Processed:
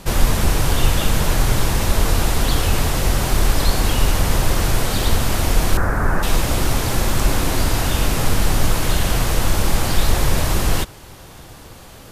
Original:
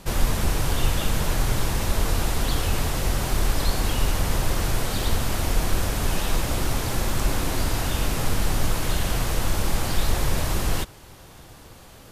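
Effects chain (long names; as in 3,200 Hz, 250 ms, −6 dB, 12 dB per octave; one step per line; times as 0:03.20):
0:05.77–0:06.23: high shelf with overshoot 2,200 Hz −12.5 dB, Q 3
level +6 dB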